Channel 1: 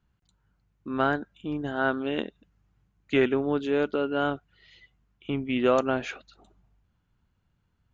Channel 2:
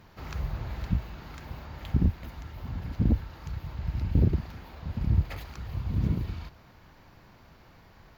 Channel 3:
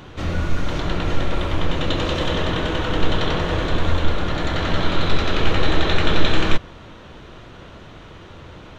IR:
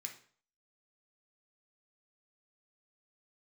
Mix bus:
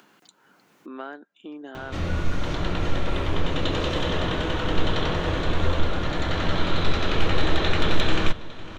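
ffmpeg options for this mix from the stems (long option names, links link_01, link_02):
-filter_complex "[0:a]highpass=frequency=260:width=0.5412,highpass=frequency=260:width=1.3066,volume=-14dB[link_01];[2:a]adelay=1750,volume=-3.5dB,asplit=2[link_02][link_03];[link_03]volume=-19.5dB,aecho=0:1:503:1[link_04];[link_01][link_02][link_04]amix=inputs=3:normalize=0,acompressor=mode=upward:threshold=-29dB:ratio=2.5,asoftclip=type=hard:threshold=-9dB"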